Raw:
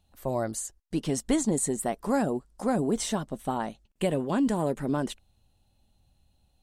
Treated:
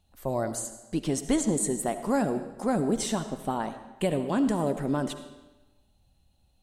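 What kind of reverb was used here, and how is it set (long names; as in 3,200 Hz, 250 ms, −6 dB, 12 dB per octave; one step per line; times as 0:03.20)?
comb and all-pass reverb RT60 1.1 s, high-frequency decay 0.9×, pre-delay 30 ms, DRR 10 dB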